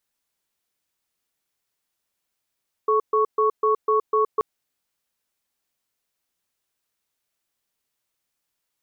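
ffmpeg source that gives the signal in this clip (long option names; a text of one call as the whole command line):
ffmpeg -f lavfi -i "aevalsrc='0.112*(sin(2*PI*432*t)+sin(2*PI*1110*t))*clip(min(mod(t,0.25),0.12-mod(t,0.25))/0.005,0,1)':duration=1.53:sample_rate=44100" out.wav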